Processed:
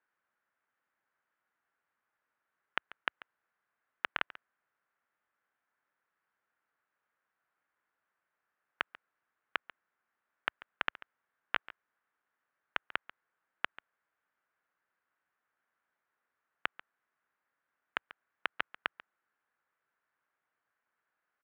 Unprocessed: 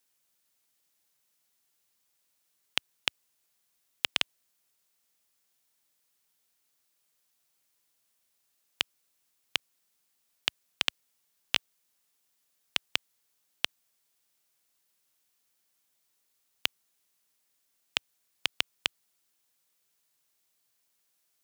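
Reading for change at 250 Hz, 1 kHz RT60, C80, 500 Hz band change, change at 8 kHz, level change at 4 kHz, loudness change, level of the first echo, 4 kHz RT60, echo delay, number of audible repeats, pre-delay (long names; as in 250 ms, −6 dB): −4.5 dB, no reverb audible, no reverb audible, −1.0 dB, below −30 dB, −14.5 dB, −6.5 dB, −18.0 dB, no reverb audible, 140 ms, 1, no reverb audible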